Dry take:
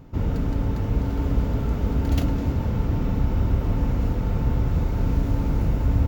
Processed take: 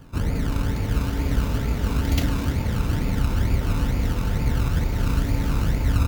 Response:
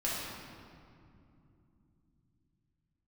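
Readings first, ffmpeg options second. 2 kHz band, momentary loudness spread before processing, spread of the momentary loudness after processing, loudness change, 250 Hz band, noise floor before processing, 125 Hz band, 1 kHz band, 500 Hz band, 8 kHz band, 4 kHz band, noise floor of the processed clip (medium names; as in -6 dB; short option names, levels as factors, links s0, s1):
+7.5 dB, 2 LU, 2 LU, 0.0 dB, -0.5 dB, -27 dBFS, 0.0 dB, +2.0 dB, -1.0 dB, no reading, +9.0 dB, -27 dBFS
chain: -filter_complex "[0:a]acrossover=split=380|2000[s0][s1][s2];[s0]acrusher=samples=27:mix=1:aa=0.000001:lfo=1:lforange=16.2:lforate=2.2[s3];[s2]dynaudnorm=f=330:g=3:m=2.11[s4];[s3][s1][s4]amix=inputs=3:normalize=0"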